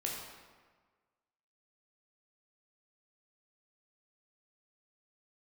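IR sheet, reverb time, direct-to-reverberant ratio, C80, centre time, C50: 1.5 s, -2.5 dB, 3.5 dB, 68 ms, 1.5 dB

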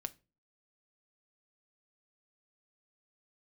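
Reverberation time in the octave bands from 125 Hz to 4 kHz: 0.45, 0.45, 0.35, 0.30, 0.25, 0.25 s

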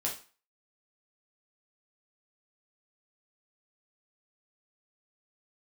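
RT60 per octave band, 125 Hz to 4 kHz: 0.30, 0.35, 0.35, 0.40, 0.40, 0.35 s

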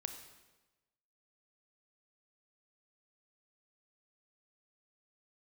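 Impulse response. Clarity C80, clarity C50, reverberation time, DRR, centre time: 10.0 dB, 8.0 dB, 1.1 s, 6.5 dB, 20 ms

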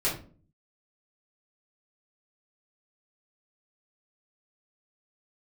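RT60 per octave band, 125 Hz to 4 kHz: 0.80, 0.65, 0.50, 0.35, 0.30, 0.25 s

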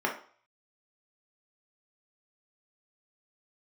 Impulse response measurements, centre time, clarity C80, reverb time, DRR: 21 ms, 13.5 dB, 0.45 s, -1.5 dB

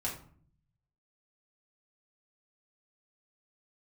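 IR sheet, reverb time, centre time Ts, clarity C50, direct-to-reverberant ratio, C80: 0.50 s, 25 ms, 7.5 dB, -5.0 dB, 12.0 dB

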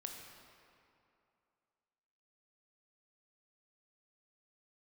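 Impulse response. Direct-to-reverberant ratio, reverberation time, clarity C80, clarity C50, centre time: 1.5 dB, 2.6 s, 4.0 dB, 3.0 dB, 77 ms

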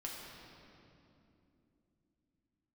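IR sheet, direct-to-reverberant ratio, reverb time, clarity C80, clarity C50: -3.5 dB, 2.9 s, 1.0 dB, 0.0 dB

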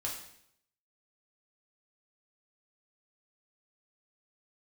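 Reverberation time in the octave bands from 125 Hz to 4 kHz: 0.85, 0.75, 0.75, 0.65, 0.70, 0.70 s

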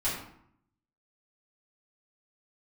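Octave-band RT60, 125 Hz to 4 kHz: 0.95, 0.85, 0.65, 0.70, 0.55, 0.45 s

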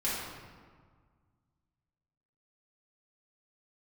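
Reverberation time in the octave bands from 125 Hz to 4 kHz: 2.5, 2.1, 1.6, 1.7, 1.3, 1.0 s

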